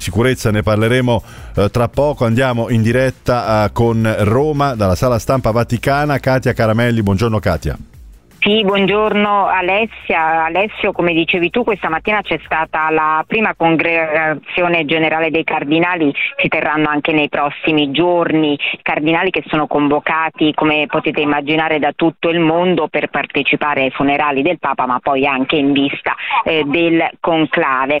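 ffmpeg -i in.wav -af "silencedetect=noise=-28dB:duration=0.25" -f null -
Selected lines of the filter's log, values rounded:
silence_start: 7.82
silence_end: 8.42 | silence_duration: 0.60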